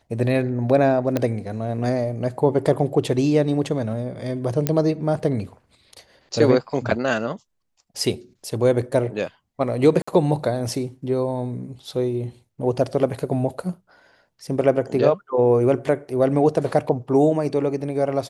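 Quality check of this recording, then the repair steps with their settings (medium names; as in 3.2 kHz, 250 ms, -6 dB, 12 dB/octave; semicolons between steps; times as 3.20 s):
1.17 s: pop -9 dBFS
4.67 s: pop -5 dBFS
10.02–10.07 s: dropout 55 ms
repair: de-click; interpolate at 10.02 s, 55 ms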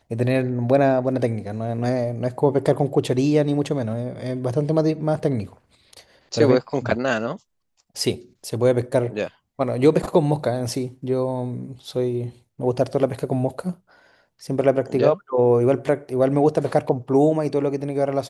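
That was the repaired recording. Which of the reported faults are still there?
nothing left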